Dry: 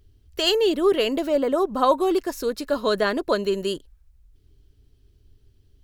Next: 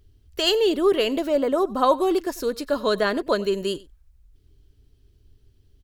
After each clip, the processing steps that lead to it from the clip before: echo 94 ms -21.5 dB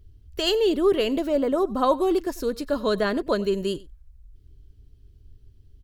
low shelf 240 Hz +10 dB; gain -3.5 dB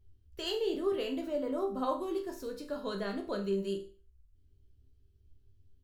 resonator bank C2 sus4, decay 0.38 s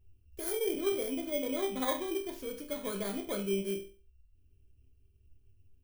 FFT order left unsorted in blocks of 16 samples

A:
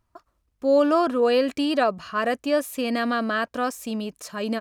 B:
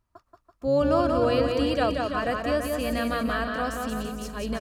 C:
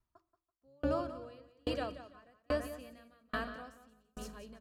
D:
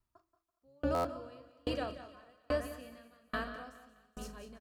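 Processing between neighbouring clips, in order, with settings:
octaver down 2 oct, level -4 dB; on a send: bouncing-ball echo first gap 0.18 s, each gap 0.85×, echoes 5; on the sum: gain -4.5 dB
on a send at -15 dB: reverb RT60 0.55 s, pre-delay 3 ms; on the sum: dB-ramp tremolo decaying 1.2 Hz, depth 40 dB; gain -6.5 dB
doubler 39 ms -12.5 dB; thinning echo 0.208 s, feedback 41%, high-pass 420 Hz, level -16 dB; stuck buffer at 0.94, samples 512, times 8

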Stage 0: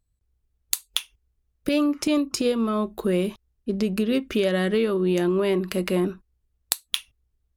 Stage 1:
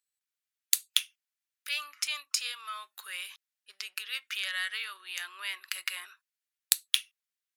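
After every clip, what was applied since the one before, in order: HPF 1500 Hz 24 dB/oct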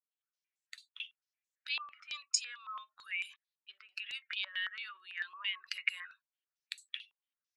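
spectral contrast raised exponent 1.7; stepped low-pass 9 Hz 1000–7400 Hz; gain -8 dB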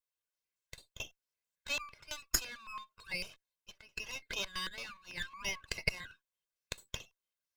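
minimum comb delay 1.9 ms; gain +1.5 dB

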